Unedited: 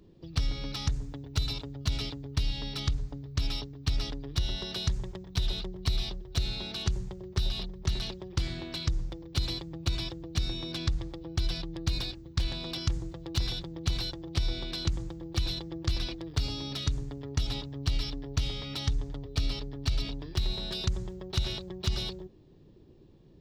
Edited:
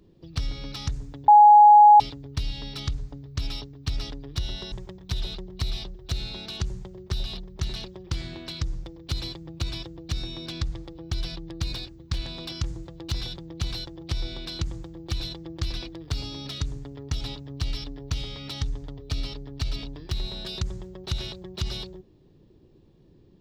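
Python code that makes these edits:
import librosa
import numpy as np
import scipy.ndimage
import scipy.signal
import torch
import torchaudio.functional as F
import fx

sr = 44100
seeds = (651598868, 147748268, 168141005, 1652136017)

y = fx.edit(x, sr, fx.bleep(start_s=1.28, length_s=0.72, hz=835.0, db=-8.5),
    fx.cut(start_s=4.72, length_s=0.26), tone=tone)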